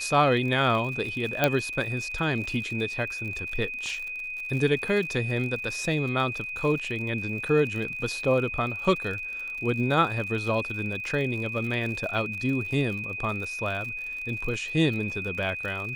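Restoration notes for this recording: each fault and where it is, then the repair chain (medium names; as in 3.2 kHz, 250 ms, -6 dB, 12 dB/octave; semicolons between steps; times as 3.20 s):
crackle 57 per s -34 dBFS
whine 2.5 kHz -32 dBFS
1.44 s: pop -7 dBFS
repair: de-click; band-stop 2.5 kHz, Q 30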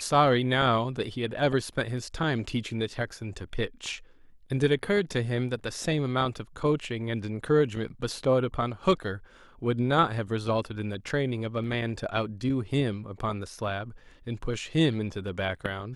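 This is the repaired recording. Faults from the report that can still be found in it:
1.44 s: pop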